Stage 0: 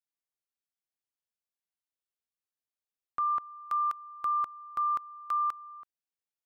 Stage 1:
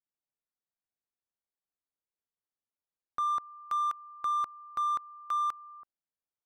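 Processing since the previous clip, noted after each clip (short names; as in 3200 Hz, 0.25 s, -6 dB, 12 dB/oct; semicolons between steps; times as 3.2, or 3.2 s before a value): Wiener smoothing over 15 samples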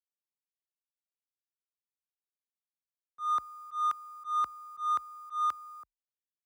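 bit-crush 11-bit; frequency shift +34 Hz; auto swell 0.148 s; gain +2 dB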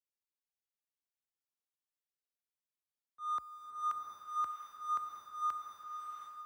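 bloom reverb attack 0.72 s, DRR 0.5 dB; gain -7 dB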